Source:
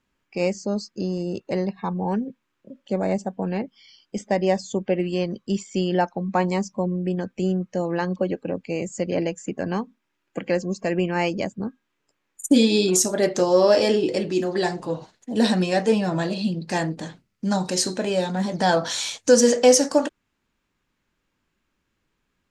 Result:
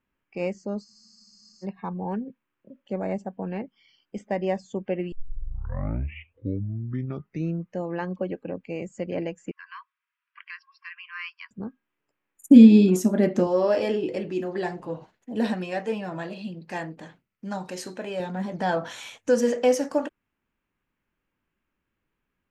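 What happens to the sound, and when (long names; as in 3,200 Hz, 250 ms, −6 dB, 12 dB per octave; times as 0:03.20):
0:00.87: frozen spectrum 0.77 s
0:05.12: tape start 2.66 s
0:09.51–0:11.51: linear-phase brick-wall band-pass 950–5,700 Hz
0:12.47–0:13.47: parametric band 220 Hz +15 dB 0.84 octaves
0:15.54–0:18.20: low-shelf EQ 430 Hz −6.5 dB
0:18.77–0:19.30: parametric band 4,700 Hz −6.5 dB 0.31 octaves
whole clip: flat-topped bell 6,000 Hz −10.5 dB; level −5.5 dB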